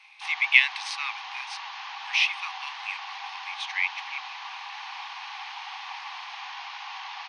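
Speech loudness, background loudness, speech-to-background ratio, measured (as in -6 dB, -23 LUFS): -26.0 LUFS, -37.0 LUFS, 11.0 dB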